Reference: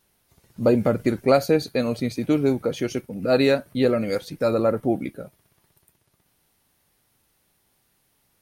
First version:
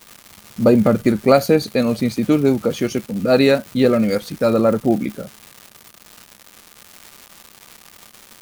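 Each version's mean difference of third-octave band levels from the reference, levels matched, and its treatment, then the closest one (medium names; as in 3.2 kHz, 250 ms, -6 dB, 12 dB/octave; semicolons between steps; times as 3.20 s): 3.0 dB: crackle 360 per s -33 dBFS; treble shelf 11 kHz +4.5 dB; small resonant body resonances 210/1200 Hz, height 8 dB, ringing for 95 ms; trim +4.5 dB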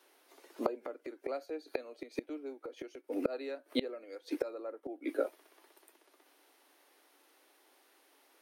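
10.5 dB: steep high-pass 280 Hz 72 dB/octave; treble shelf 5 kHz -10.5 dB; inverted gate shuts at -23 dBFS, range -27 dB; trim +6 dB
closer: first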